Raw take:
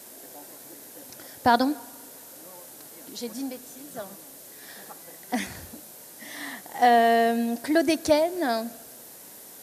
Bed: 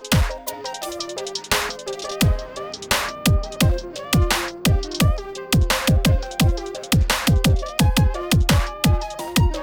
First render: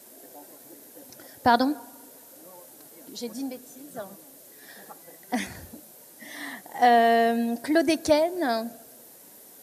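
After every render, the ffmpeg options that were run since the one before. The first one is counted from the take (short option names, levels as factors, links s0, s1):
-af "afftdn=nr=6:nf=-46"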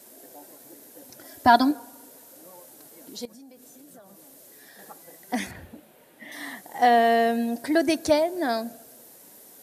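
-filter_complex "[0:a]asettb=1/sr,asplit=3[s0][s1][s2];[s0]atrim=end=1.254[s3];[s1]atrim=start=1.25:end=1.71,asetpts=PTS-STARTPTS,afade=t=in:d=0.004:c=qsin,afade=t=out:st=0.456:d=0.004:c=qsin,aecho=1:1:3:0.85,atrim=end_sample=20286[s4];[s2]atrim=start=1.706[s5];[s3][s4]acrossfade=d=0.004:c1=hsin:c2=qsin[s6];[s6][s5]acrossfade=d=0.004:c1=qsin:c2=hsin,asettb=1/sr,asplit=3[s7][s8][s9];[s7]atrim=end=3.254[s10];[s8]atrim=start=3.25:end=4.79,asetpts=PTS-STARTPTS,afade=t=in:d=0.004:c=qsin,afade=t=out:st=1.536:d=0.004:c=qsin,acompressor=threshold=0.00562:ratio=10:attack=3.2:release=140:knee=1:detection=peak[s11];[s9]atrim=start=4.786[s12];[s10][s11]acrossfade=d=0.004:c1=hsin:c2=qsin[s13];[s13][s12]acrossfade=d=0.004:c1=qsin:c2=hsin,asettb=1/sr,asplit=3[s14][s15][s16];[s14]atrim=end=5.514[s17];[s15]atrim=start=5.51:end=6.32,asetpts=PTS-STARTPTS,afade=t=in:d=0.004:c=qsin,afade=t=out:st=0.806:d=0.004:c=qsin,highshelf=f=4000:t=q:w=1.5:g=-10.5[s18];[s16]atrim=start=6.316[s19];[s17][s18]acrossfade=d=0.004:c1=hsin:c2=qsin[s20];[s20][s19]acrossfade=d=0.004:c1=qsin:c2=hsin"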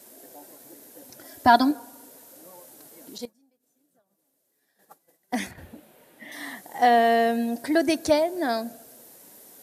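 -filter_complex "[0:a]asettb=1/sr,asplit=3[s0][s1][s2];[s0]atrim=end=3.184[s3];[s1]atrim=start=3.18:end=5.58,asetpts=PTS-STARTPTS,afade=t=in:d=0.004:c=qsin,afade=t=out:st=2.396:d=0.004:c=qsin,agate=range=0.0224:threshold=0.0141:ratio=3:release=100:detection=peak[s4];[s2]atrim=start=5.576[s5];[s3][s4]acrossfade=d=0.004:c1=hsin:c2=qsin[s6];[s6][s5]acrossfade=d=0.004:c1=qsin:c2=hsin"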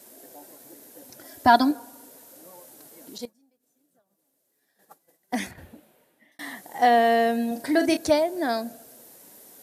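-filter_complex "[0:a]asettb=1/sr,asplit=3[s0][s1][s2];[s0]atrim=end=7.474[s3];[s1]atrim=start=7.47:end=7.97,asetpts=PTS-STARTPTS,afade=t=in:d=0.004:c=qsin,afade=t=out:st=0.496:d=0.004:c=qsin,asplit=2[s4][s5];[s5]adelay=40,volume=0.422[s6];[s4][s6]amix=inputs=2:normalize=0,atrim=end_sample=22050[s7];[s2]atrim=start=7.966[s8];[s3][s7]acrossfade=d=0.004:c1=hsin:c2=qsin[s9];[s9][s8]acrossfade=d=0.004:c1=qsin:c2=hsin,asplit=2[s10][s11];[s10]atrim=end=6.39,asetpts=PTS-STARTPTS,afade=t=out:st=5.5:d=0.89[s12];[s11]atrim=start=6.39,asetpts=PTS-STARTPTS,afade=t=in:d=0.004:c=hsin[s13];[s12][s13]concat=n=2:v=0:a=1"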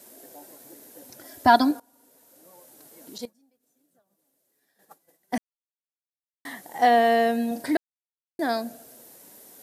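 -filter_complex "[0:a]asplit=6[s0][s1][s2][s3][s4][s5];[s0]atrim=end=1.8,asetpts=PTS-STARTPTS,afade=t=out:st=1.796:d=0.004:c=hsin:silence=0.112202[s6];[s1]atrim=start=1.8:end=5.38,asetpts=PTS-STARTPTS,afade=t=in:d=1.41:silence=0.112202,afade=t=out:st=3.576:d=0.004:c=hsin[s7];[s2]atrim=start=5.38:end=6.45,asetpts=PTS-STARTPTS,volume=0[s8];[s3]atrim=start=6.45:end=7.77,asetpts=PTS-STARTPTS,afade=t=in:d=0.004:c=hsin,afade=t=out:st=1.316:d=0.004:c=hsin[s9];[s4]atrim=start=7.77:end=8.39,asetpts=PTS-STARTPTS,volume=0[s10];[s5]atrim=start=8.39,asetpts=PTS-STARTPTS,afade=t=in:d=0.004:c=hsin[s11];[s6][s7][s8][s9][s10][s11]concat=n=6:v=0:a=1"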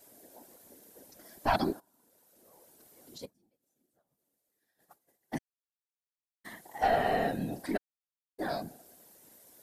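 -af "aeval=exprs='(tanh(2.24*val(0)+0.55)-tanh(0.55))/2.24':c=same,afftfilt=real='hypot(re,im)*cos(2*PI*random(0))':imag='hypot(re,im)*sin(2*PI*random(1))':win_size=512:overlap=0.75"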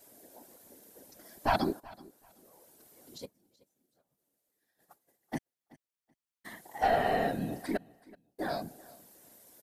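-af "aecho=1:1:379|758:0.0794|0.0159"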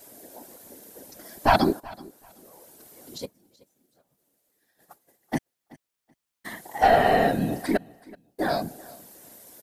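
-af "volume=2.82"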